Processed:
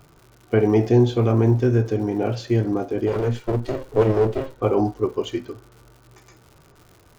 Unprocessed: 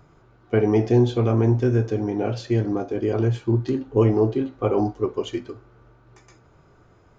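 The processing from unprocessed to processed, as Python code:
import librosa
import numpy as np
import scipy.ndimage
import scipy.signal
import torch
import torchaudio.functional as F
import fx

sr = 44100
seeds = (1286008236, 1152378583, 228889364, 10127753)

y = fx.lower_of_two(x, sr, delay_ms=2.1, at=(3.06, 4.6), fade=0.02)
y = fx.dmg_crackle(y, sr, seeds[0], per_s=170.0, level_db=-41.0)
y = F.gain(torch.from_numpy(y), 1.5).numpy()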